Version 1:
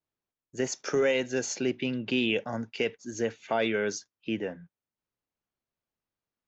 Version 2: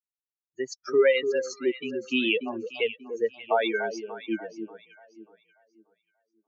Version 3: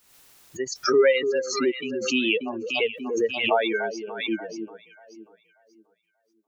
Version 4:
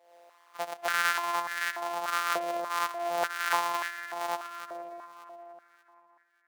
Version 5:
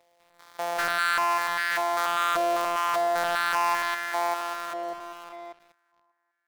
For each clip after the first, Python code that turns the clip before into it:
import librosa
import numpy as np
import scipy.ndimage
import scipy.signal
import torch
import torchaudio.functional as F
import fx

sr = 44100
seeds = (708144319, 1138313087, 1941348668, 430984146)

y1 = fx.bin_expand(x, sr, power=3.0)
y1 = scipy.signal.sosfilt(scipy.signal.cheby1(2, 1.0, [340.0, 3500.0], 'bandpass', fs=sr, output='sos'), y1)
y1 = fx.echo_alternate(y1, sr, ms=293, hz=820.0, feedback_pct=52, wet_db=-7.5)
y1 = y1 * librosa.db_to_amplitude(8.5)
y2 = fx.pre_swell(y1, sr, db_per_s=63.0)
y2 = y2 * librosa.db_to_amplitude(1.5)
y3 = np.r_[np.sort(y2[:len(y2) // 256 * 256].reshape(-1, 256), axis=1).ravel(), y2[len(y2) // 256 * 256:]]
y3 = fx.echo_bbd(y3, sr, ms=235, stages=4096, feedback_pct=71, wet_db=-12.0)
y3 = fx.filter_held_highpass(y3, sr, hz=3.4, low_hz=610.0, high_hz=1700.0)
y3 = y3 * librosa.db_to_amplitude(-6.5)
y4 = fx.spec_steps(y3, sr, hold_ms=200)
y4 = fx.leveller(y4, sr, passes=3)
y4 = y4 * librosa.db_to_amplitude(-2.5)